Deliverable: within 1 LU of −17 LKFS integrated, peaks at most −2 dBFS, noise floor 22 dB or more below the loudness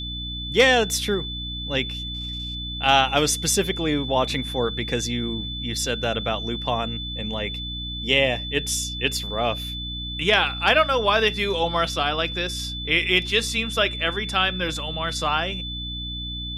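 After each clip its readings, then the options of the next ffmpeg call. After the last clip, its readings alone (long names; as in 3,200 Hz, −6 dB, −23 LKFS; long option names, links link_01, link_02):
mains hum 60 Hz; hum harmonics up to 300 Hz; level of the hum −31 dBFS; interfering tone 3,500 Hz; level of the tone −31 dBFS; integrated loudness −23.0 LKFS; sample peak −4.5 dBFS; target loudness −17.0 LKFS
→ -af "bandreject=frequency=60:width_type=h:width=4,bandreject=frequency=120:width_type=h:width=4,bandreject=frequency=180:width_type=h:width=4,bandreject=frequency=240:width_type=h:width=4,bandreject=frequency=300:width_type=h:width=4"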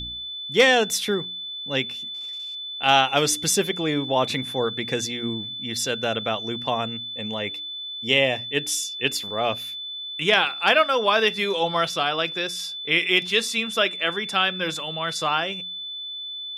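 mains hum none found; interfering tone 3,500 Hz; level of the tone −31 dBFS
→ -af "bandreject=frequency=3500:width=30"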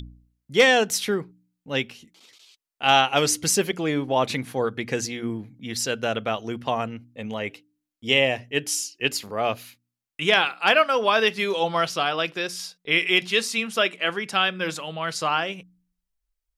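interfering tone none found; integrated loudness −23.0 LKFS; sample peak −5.0 dBFS; target loudness −17.0 LKFS
→ -af "volume=6dB,alimiter=limit=-2dB:level=0:latency=1"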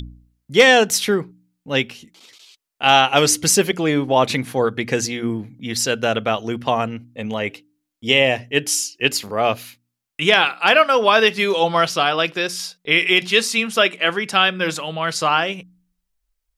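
integrated loudness −17.5 LKFS; sample peak −2.0 dBFS; background noise floor −78 dBFS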